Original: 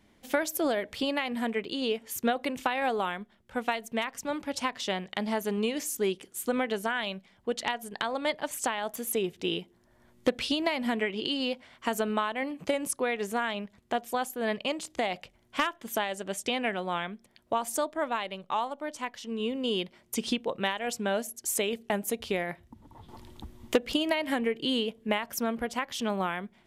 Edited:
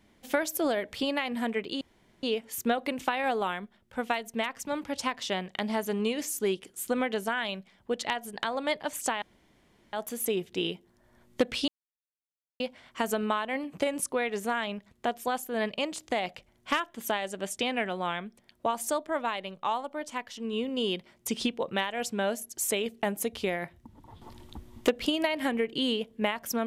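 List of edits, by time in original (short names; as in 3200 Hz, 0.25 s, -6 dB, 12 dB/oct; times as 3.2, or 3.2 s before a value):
1.81 insert room tone 0.42 s
8.8 insert room tone 0.71 s
10.55–11.47 mute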